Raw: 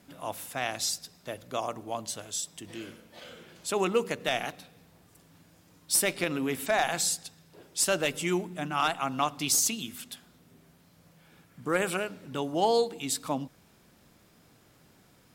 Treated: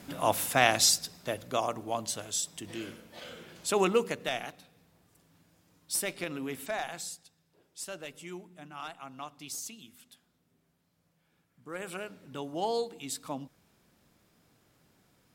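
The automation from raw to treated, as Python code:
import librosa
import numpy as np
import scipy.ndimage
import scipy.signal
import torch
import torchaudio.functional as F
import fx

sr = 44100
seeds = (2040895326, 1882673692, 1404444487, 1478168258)

y = fx.gain(x, sr, db=fx.line((0.6, 9.0), (1.7, 1.5), (3.85, 1.5), (4.51, -6.5), (6.62, -6.5), (7.26, -14.5), (11.66, -14.5), (12.07, -6.5)))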